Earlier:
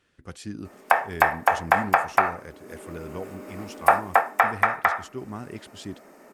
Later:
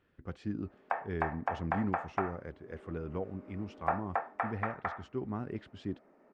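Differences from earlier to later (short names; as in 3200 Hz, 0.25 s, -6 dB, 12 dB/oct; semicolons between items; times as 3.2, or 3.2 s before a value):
background -11.0 dB; master: add tape spacing loss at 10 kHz 35 dB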